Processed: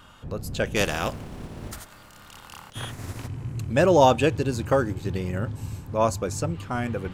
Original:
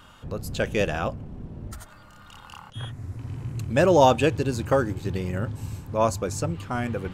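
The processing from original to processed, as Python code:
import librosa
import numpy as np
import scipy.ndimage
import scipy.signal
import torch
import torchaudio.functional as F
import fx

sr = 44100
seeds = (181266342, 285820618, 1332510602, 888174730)

y = fx.spec_flatten(x, sr, power=0.63, at=(0.75, 3.26), fade=0.02)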